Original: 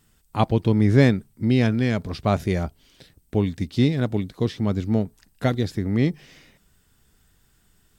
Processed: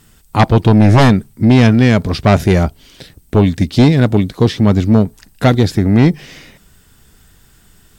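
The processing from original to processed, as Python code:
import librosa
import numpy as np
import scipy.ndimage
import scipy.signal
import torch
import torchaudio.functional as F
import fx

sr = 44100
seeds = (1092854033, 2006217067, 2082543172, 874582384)

y = fx.fold_sine(x, sr, drive_db=8, ceiling_db=-4.5)
y = y * 10.0 ** (1.5 / 20.0)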